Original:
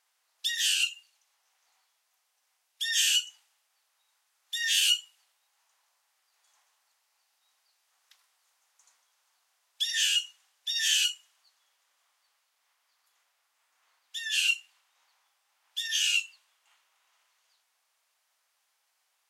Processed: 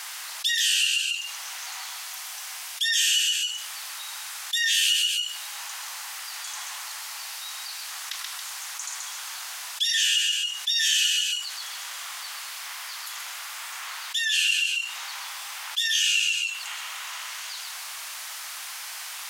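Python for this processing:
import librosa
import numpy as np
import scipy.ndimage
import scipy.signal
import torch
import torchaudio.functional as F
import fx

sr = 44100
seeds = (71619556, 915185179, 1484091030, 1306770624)

y = scipy.signal.sosfilt(scipy.signal.butter(2, 980.0, 'highpass', fs=sr, output='sos'), x)
y = fx.echo_multitap(y, sr, ms=(130, 276), db=(-6.0, -15.0))
y = fx.env_flatten(y, sr, amount_pct=70)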